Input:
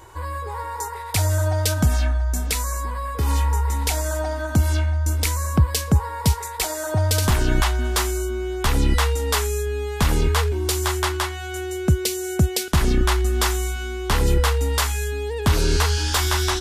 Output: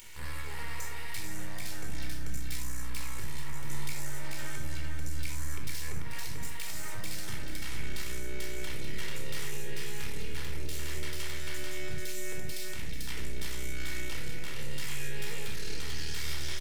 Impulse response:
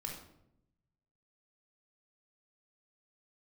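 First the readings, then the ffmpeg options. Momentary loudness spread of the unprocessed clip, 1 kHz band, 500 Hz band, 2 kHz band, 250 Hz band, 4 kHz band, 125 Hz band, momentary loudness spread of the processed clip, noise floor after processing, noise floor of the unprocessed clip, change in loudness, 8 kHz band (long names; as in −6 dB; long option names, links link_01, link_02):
7 LU, −21.5 dB, −20.0 dB, −11.5 dB, −18.0 dB, −13.5 dB, −20.0 dB, 3 LU, −29 dBFS, −31 dBFS, −17.0 dB, −14.5 dB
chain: -filter_complex "[0:a]equalizer=frequency=2100:width_type=o:width=0.77:gain=2,acrossover=split=2200[link_01][link_02];[link_02]acompressor=mode=upward:threshold=-35dB:ratio=2.5[link_03];[link_01][link_03]amix=inputs=2:normalize=0,aeval=exprs='max(val(0),0)':channel_layout=same,acompressor=threshold=-23dB:ratio=6,aecho=1:1:440|880|1320|1760:0.596|0.191|0.061|0.0195,tremolo=f=220:d=0.788,alimiter=limit=-20.5dB:level=0:latency=1:release=89,highshelf=frequency=1500:width_type=q:width=1.5:gain=8.5[link_04];[1:a]atrim=start_sample=2205,atrim=end_sample=4410[link_05];[link_04][link_05]afir=irnorm=-1:irlink=0,volume=-7dB"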